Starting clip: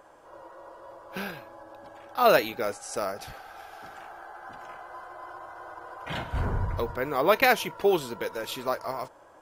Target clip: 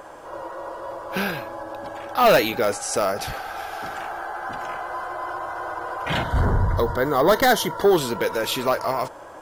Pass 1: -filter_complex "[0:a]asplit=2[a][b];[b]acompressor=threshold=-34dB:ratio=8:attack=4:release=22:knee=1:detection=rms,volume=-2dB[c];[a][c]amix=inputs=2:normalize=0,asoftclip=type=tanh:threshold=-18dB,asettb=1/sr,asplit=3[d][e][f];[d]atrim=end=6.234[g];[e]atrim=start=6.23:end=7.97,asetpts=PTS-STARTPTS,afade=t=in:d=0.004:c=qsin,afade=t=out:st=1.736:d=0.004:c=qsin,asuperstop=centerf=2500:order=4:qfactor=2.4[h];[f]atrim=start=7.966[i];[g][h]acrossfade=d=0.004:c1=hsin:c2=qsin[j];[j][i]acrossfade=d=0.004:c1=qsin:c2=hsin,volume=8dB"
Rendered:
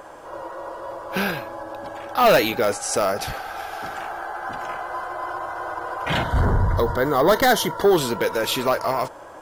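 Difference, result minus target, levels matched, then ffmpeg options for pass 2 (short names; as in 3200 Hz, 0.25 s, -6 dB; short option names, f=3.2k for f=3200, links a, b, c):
compressor: peak gain reduction -6 dB
-filter_complex "[0:a]asplit=2[a][b];[b]acompressor=threshold=-41dB:ratio=8:attack=4:release=22:knee=1:detection=rms,volume=-2dB[c];[a][c]amix=inputs=2:normalize=0,asoftclip=type=tanh:threshold=-18dB,asettb=1/sr,asplit=3[d][e][f];[d]atrim=end=6.234[g];[e]atrim=start=6.23:end=7.97,asetpts=PTS-STARTPTS,afade=t=in:d=0.004:c=qsin,afade=t=out:st=1.736:d=0.004:c=qsin,asuperstop=centerf=2500:order=4:qfactor=2.4[h];[f]atrim=start=7.966[i];[g][h]acrossfade=d=0.004:c1=hsin:c2=qsin[j];[j][i]acrossfade=d=0.004:c1=qsin:c2=hsin,volume=8dB"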